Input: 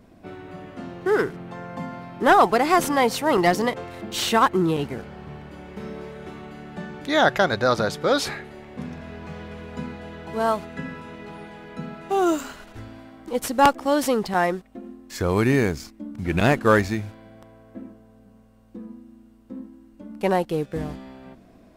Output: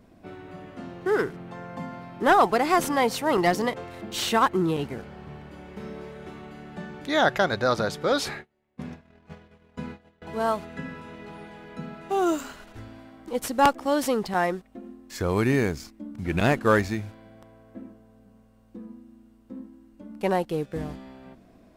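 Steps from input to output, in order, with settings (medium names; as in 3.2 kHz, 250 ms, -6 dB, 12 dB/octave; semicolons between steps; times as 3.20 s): 8.12–10.22 s: gate -34 dBFS, range -30 dB; trim -3 dB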